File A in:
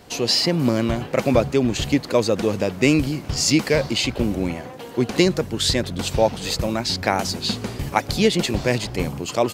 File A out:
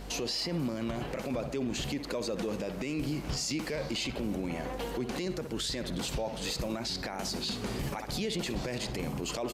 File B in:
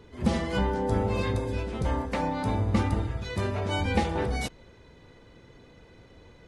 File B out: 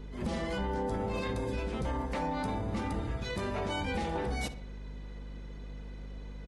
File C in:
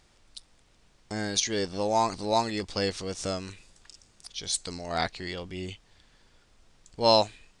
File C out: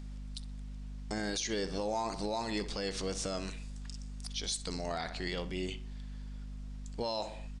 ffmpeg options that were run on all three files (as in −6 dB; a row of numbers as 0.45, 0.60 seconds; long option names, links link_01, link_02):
-filter_complex "[0:a]aeval=exprs='val(0)+0.00891*(sin(2*PI*50*n/s)+sin(2*PI*2*50*n/s)/2+sin(2*PI*3*50*n/s)/3+sin(2*PI*4*50*n/s)/4+sin(2*PI*5*50*n/s)/5)':channel_layout=same,equalizer=frequency=95:width_type=o:width=0.48:gain=-10.5,asplit=2[link_01][link_02];[link_02]adelay=62,lowpass=frequency=3300:poles=1,volume=-14.5dB,asplit=2[link_03][link_04];[link_04]adelay=62,lowpass=frequency=3300:poles=1,volume=0.42,asplit=2[link_05][link_06];[link_06]adelay=62,lowpass=frequency=3300:poles=1,volume=0.42,asplit=2[link_07][link_08];[link_08]adelay=62,lowpass=frequency=3300:poles=1,volume=0.42[link_09];[link_03][link_05][link_07][link_09]amix=inputs=4:normalize=0[link_10];[link_01][link_10]amix=inputs=2:normalize=0,acompressor=threshold=-29dB:ratio=3,aresample=32000,aresample=44100,alimiter=level_in=1dB:limit=-24dB:level=0:latency=1:release=12,volume=-1dB"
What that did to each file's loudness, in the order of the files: −13.0, −6.0, −9.5 LU